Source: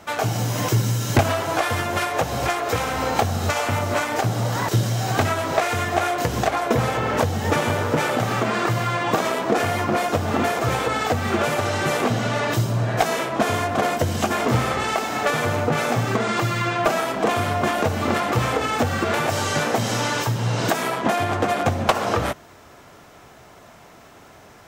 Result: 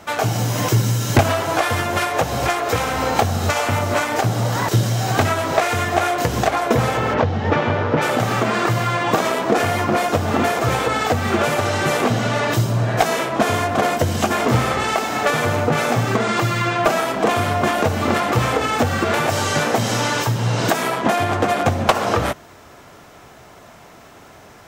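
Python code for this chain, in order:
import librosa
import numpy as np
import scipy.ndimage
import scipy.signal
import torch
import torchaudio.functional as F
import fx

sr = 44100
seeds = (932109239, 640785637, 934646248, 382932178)

y = fx.gaussian_blur(x, sr, sigma=2.1, at=(7.13, 8.01), fade=0.02)
y = y * librosa.db_to_amplitude(3.0)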